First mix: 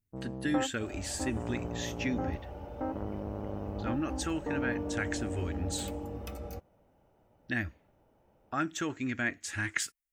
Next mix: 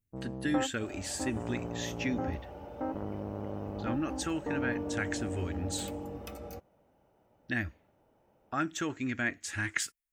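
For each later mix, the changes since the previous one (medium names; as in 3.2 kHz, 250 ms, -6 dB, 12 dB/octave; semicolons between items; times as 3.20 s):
second sound: add high-pass 130 Hz 6 dB/octave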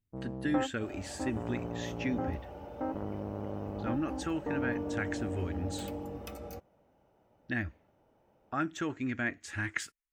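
speech: add treble shelf 3.7 kHz -10 dB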